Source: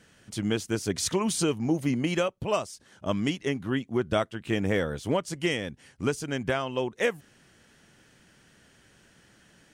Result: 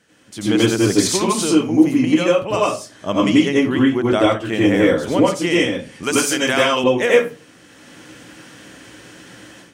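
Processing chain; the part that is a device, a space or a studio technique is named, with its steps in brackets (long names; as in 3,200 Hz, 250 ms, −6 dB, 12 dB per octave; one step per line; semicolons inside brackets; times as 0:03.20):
far laptop microphone (convolution reverb RT60 0.35 s, pre-delay 83 ms, DRR −4.5 dB; high-pass filter 190 Hz 6 dB per octave; automatic gain control gain up to 14 dB)
0:06.03–0:06.84: spectral tilt +3 dB per octave
level −1 dB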